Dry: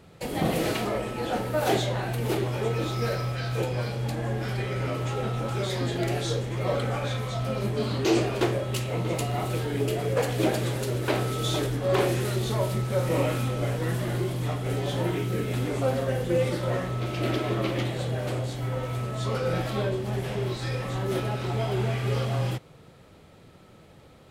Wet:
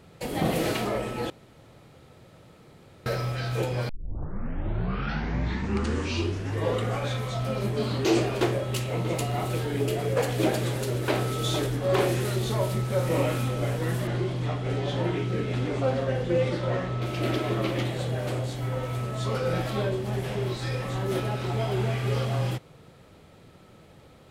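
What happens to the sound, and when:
0:01.30–0:03.06: fill with room tone
0:03.89: tape start 3.17 s
0:14.07–0:17.02: low-pass filter 5,400 Hz

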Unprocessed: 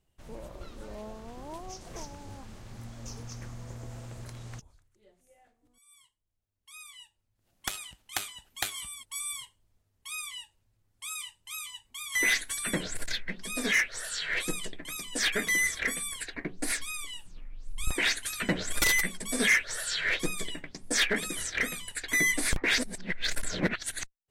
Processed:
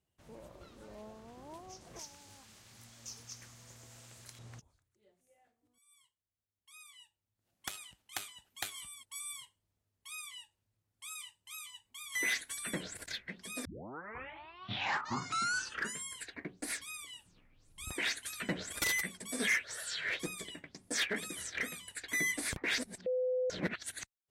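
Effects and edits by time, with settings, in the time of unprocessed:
0:01.99–0:04.39: tilt shelving filter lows −8.5 dB, about 1,500 Hz
0:13.65: tape start 2.59 s
0:23.06–0:23.50: beep over 507 Hz −22 dBFS
whole clip: high-pass filter 72 Hz 12 dB per octave; level −7.5 dB

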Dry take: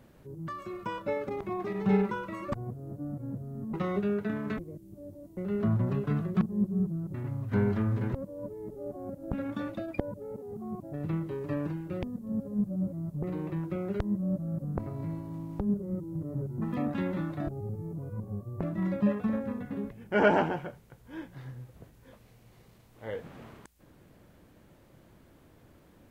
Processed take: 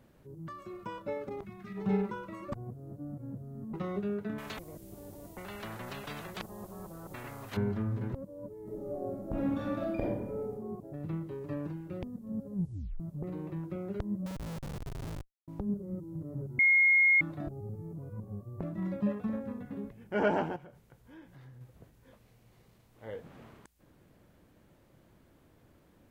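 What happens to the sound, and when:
0:01.45–0:01.77: gain on a spectral selection 250–1,200 Hz −14 dB
0:04.38–0:07.57: every bin compressed towards the loudest bin 4 to 1
0:08.62–0:10.52: thrown reverb, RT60 0.99 s, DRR −5.5 dB
0:12.55: tape stop 0.45 s
0:14.26–0:15.48: comparator with hysteresis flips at −32.5 dBFS
0:16.59–0:17.21: beep over 2,150 Hz −12.5 dBFS
0:20.56–0:21.61: downward compressor 2.5 to 1, threshold −46 dBFS
whole clip: dynamic equaliser 2,000 Hz, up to −3 dB, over −50 dBFS, Q 0.78; level −4.5 dB

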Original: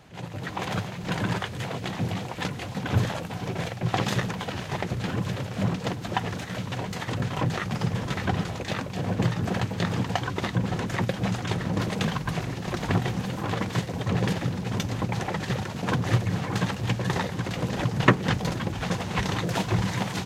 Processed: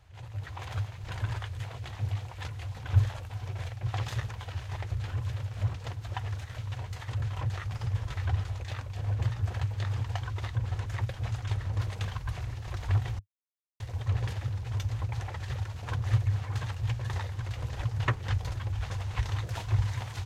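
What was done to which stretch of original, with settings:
0:13.19–0:13.80: silence
whole clip: drawn EQ curve 100 Hz 0 dB, 180 Hz −30 dB, 400 Hz −21 dB, 950 Hz −15 dB; level +4.5 dB

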